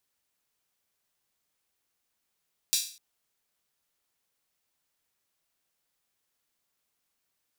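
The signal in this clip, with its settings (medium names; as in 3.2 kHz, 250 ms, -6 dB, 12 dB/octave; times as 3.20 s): open hi-hat length 0.25 s, high-pass 4.2 kHz, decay 0.43 s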